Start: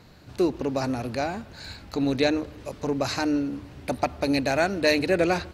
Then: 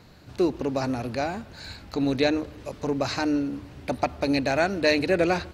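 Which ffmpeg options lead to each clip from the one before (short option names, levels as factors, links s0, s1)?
-filter_complex "[0:a]acrossover=split=6800[s0][s1];[s1]acompressor=threshold=0.00224:ratio=4:attack=1:release=60[s2];[s0][s2]amix=inputs=2:normalize=0"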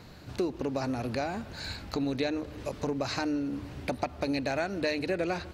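-af "acompressor=threshold=0.0251:ratio=3,volume=1.26"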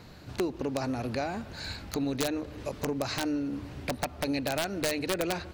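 -af "aeval=exprs='(mod(9.44*val(0)+1,2)-1)/9.44':c=same"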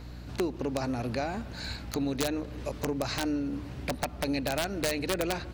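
-af "aeval=exprs='val(0)+0.00794*(sin(2*PI*60*n/s)+sin(2*PI*2*60*n/s)/2+sin(2*PI*3*60*n/s)/3+sin(2*PI*4*60*n/s)/4+sin(2*PI*5*60*n/s)/5)':c=same"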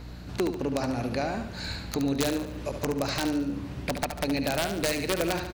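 -af "aecho=1:1:72|144|216|288|360:0.398|0.179|0.0806|0.0363|0.0163,volume=1.26"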